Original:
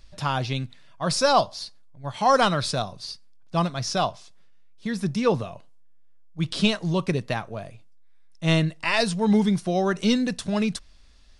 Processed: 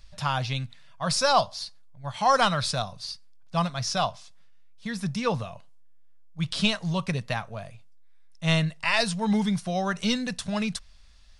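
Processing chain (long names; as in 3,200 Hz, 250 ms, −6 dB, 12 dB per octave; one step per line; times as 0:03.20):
parametric band 340 Hz −14 dB 0.87 octaves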